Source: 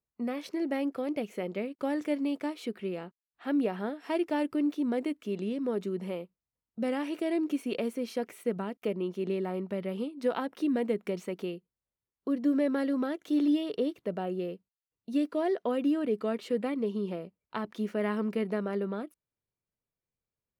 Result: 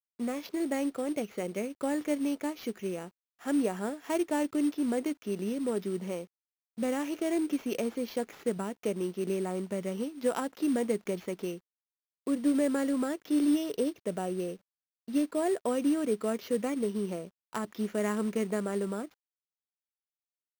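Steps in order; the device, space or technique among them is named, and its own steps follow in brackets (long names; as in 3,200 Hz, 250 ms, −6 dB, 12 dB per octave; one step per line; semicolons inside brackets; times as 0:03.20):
early companding sampler (sample-rate reduction 8,800 Hz, jitter 0%; log-companded quantiser 6 bits)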